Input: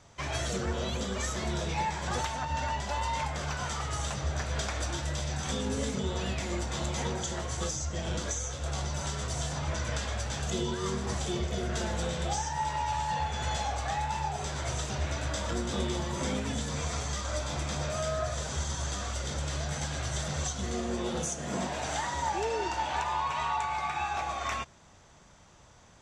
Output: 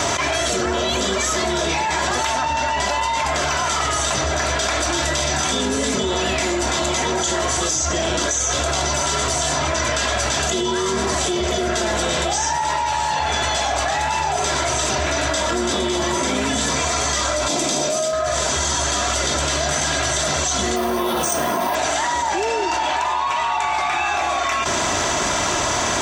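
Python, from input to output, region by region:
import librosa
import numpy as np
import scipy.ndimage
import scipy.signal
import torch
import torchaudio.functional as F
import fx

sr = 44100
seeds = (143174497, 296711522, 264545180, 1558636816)

y = fx.chain(x, sr, fx.cheby1_highpass(hz=240.0, order=2),
    fx.peak_eq(hz=1500.0, db=-11.5, octaves=2.2), at=(17.48, 18.13))
y = fx.chain(y, sr, fx.steep_lowpass(hz=6600.0, slope=36),
    fx.peak_eq(hz=990.0, db=7.5, octaves=0.71),
    fx.resample_bad(factor=3, down='filtered', up='hold'), at=(20.76, 21.75))
y = fx.highpass(y, sr, hz=300.0, slope=6)
y = y + 0.49 * np.pad(y, (int(3.0 * sr / 1000.0), 0))[:len(y)]
y = fx.env_flatten(y, sr, amount_pct=100)
y = y * librosa.db_to_amplitude(7.5)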